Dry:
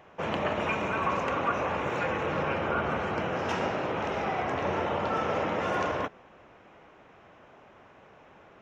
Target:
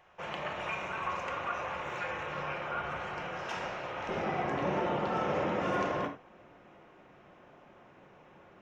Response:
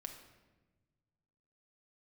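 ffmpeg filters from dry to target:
-filter_complex "[0:a]asetnsamples=n=441:p=0,asendcmd='4.09 equalizer g 3.5',equalizer=f=240:t=o:w=2.3:g=-11.5[s0];[1:a]atrim=start_sample=2205,afade=t=out:st=0.15:d=0.01,atrim=end_sample=7056[s1];[s0][s1]afir=irnorm=-1:irlink=0"

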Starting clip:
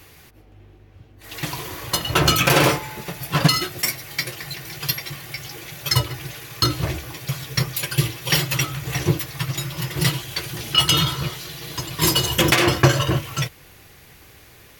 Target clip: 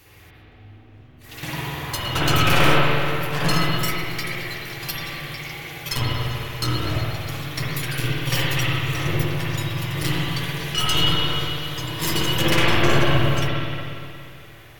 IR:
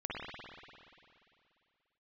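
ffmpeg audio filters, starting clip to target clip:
-filter_complex "[0:a]aeval=exprs='clip(val(0),-1,0.0794)':c=same,bandreject=f=46.25:t=h:w=4,bandreject=f=92.5:t=h:w=4,bandreject=f=138.75:t=h:w=4,bandreject=f=185:t=h:w=4,bandreject=f=231.25:t=h:w=4,bandreject=f=277.5:t=h:w=4,bandreject=f=323.75:t=h:w=4,bandreject=f=370:t=h:w=4,bandreject=f=416.25:t=h:w=4,bandreject=f=462.5:t=h:w=4,bandreject=f=508.75:t=h:w=4,bandreject=f=555:t=h:w=4,bandreject=f=601.25:t=h:w=4,bandreject=f=647.5:t=h:w=4,bandreject=f=693.75:t=h:w=4,bandreject=f=740:t=h:w=4,bandreject=f=786.25:t=h:w=4,bandreject=f=832.5:t=h:w=4,bandreject=f=878.75:t=h:w=4,bandreject=f=925:t=h:w=4,bandreject=f=971.25:t=h:w=4,bandreject=f=1017.5:t=h:w=4,bandreject=f=1063.75:t=h:w=4,bandreject=f=1110:t=h:w=4,bandreject=f=1156.25:t=h:w=4,bandreject=f=1202.5:t=h:w=4,bandreject=f=1248.75:t=h:w=4,bandreject=f=1295:t=h:w=4,bandreject=f=1341.25:t=h:w=4,bandreject=f=1387.5:t=h:w=4,bandreject=f=1433.75:t=h:w=4,bandreject=f=1480:t=h:w=4,bandreject=f=1526.25:t=h:w=4[s0];[1:a]atrim=start_sample=2205[s1];[s0][s1]afir=irnorm=-1:irlink=0,volume=0.891"

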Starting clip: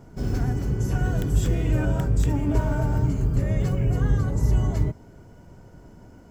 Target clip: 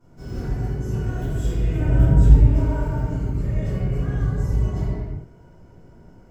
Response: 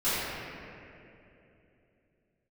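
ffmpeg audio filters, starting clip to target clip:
-filter_complex "[0:a]asettb=1/sr,asplit=3[s0][s1][s2];[s0]atrim=end=1.784[s3];[s1]atrim=start=1.78:end=2.37,asetpts=PTS-STARTPTS,afade=t=in:d=0.004:c=qsin,afade=t=out:st=0.586:d=0.004:c=qsin,lowshelf=f=350:g=10[s4];[s2]atrim=start=2.366[s5];[s3][s4]acrossfade=d=0.004:c1=hsin:c2=qsin[s6];[s6][s5]acrossfade=d=0.004:c1=qsin:c2=hsin[s7];[1:a]atrim=start_sample=2205,afade=t=out:st=0.4:d=0.01,atrim=end_sample=18081[s8];[s7][s8]afir=irnorm=-1:irlink=0,volume=0.2"

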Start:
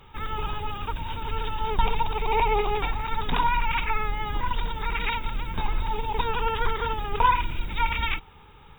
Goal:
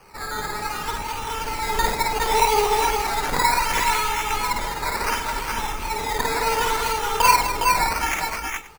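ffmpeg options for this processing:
-filter_complex "[0:a]bass=f=250:g=-11,treble=f=4000:g=-5,acrusher=samples=12:mix=1:aa=0.000001:lfo=1:lforange=7.2:lforate=0.69,asplit=2[s0][s1];[s1]aecho=0:1:53|210|410|428|526:0.668|0.335|0.531|0.501|0.112[s2];[s0][s2]amix=inputs=2:normalize=0,volume=1.41"

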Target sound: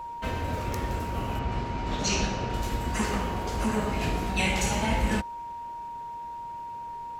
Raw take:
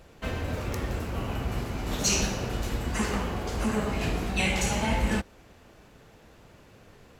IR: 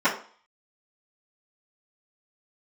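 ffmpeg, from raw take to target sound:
-filter_complex "[0:a]aeval=exprs='val(0)+0.0178*sin(2*PI*940*n/s)':c=same,asettb=1/sr,asplit=3[s0][s1][s2];[s0]atrim=end=1.394[s3];[s1]atrim=start=1.39:end=2.54,asetpts=PTS-STARTPTS,afade=t=in:d=0.004:c=qsin,afade=t=out:st=1.146:d=0.004:c=qsin,lowpass=5000[s4];[s2]atrim=start=2.536[s5];[s3][s4]acrossfade=d=0.004:c1=hsin:c2=qsin[s6];[s6][s5]acrossfade=d=0.004:c1=qsin:c2=hsin"

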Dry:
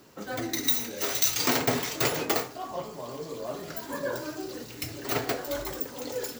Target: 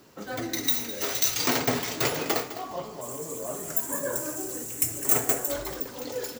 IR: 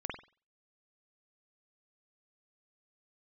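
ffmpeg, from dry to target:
-filter_complex "[0:a]asettb=1/sr,asplit=3[s0][s1][s2];[s0]atrim=end=3.014[s3];[s1]atrim=start=3.01:end=5.51,asetpts=PTS-STARTPTS,afade=t=in:d=0.004:c=qsin,afade=t=out:st=2.496:d=0.004:c=qsin,highshelf=f=6000:t=q:w=3:g=11.5[s4];[s2]atrim=start=5.506[s5];[s3][s4]acrossfade=d=0.004:c1=hsin:c2=qsin[s6];[s6][s5]acrossfade=d=0.004:c1=qsin:c2=hsin,aecho=1:1:207|414|621:0.211|0.055|0.0143"

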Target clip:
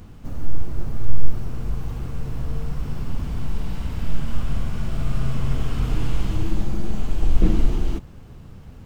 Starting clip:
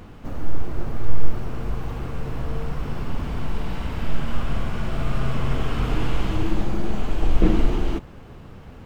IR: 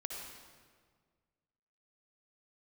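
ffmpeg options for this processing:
-af "bass=f=250:g=8,treble=f=4000:g=9,volume=0.473"

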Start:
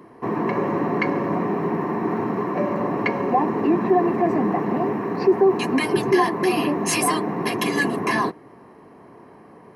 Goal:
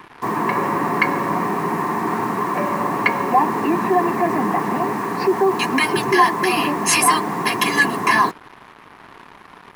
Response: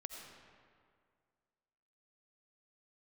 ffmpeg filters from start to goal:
-af "acrusher=bits=6:mix=0:aa=0.5,lowshelf=f=750:t=q:w=1.5:g=-6.5,volume=2.11"

